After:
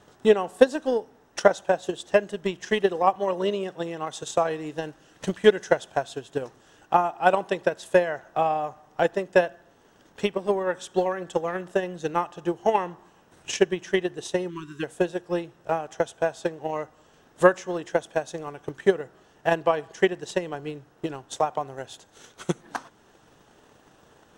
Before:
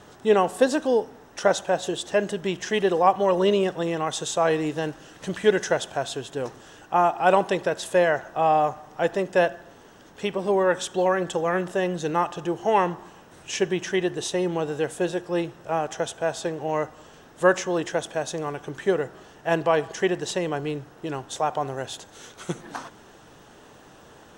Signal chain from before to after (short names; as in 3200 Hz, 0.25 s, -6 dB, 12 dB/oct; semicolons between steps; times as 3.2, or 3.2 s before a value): transient shaper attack +12 dB, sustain -2 dB; 3.16–4.23 HPF 99 Hz; 14.5–14.83 spectral delete 410–950 Hz; gain -7.5 dB